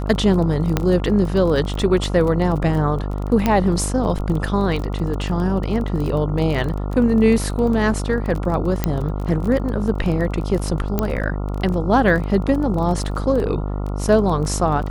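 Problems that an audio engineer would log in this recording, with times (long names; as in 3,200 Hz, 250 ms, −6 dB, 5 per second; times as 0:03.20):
mains buzz 50 Hz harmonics 28 −24 dBFS
surface crackle 22 per second −25 dBFS
0:00.77: click −4 dBFS
0:03.46: click −5 dBFS
0:08.84: click −5 dBFS
0:10.99: click −6 dBFS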